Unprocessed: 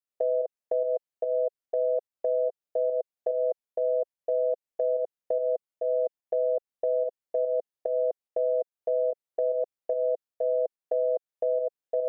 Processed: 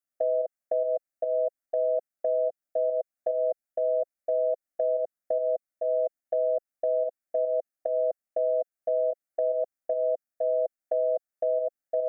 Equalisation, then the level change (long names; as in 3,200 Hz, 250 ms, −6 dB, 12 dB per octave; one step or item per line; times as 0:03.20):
phaser with its sweep stopped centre 650 Hz, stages 8
+3.0 dB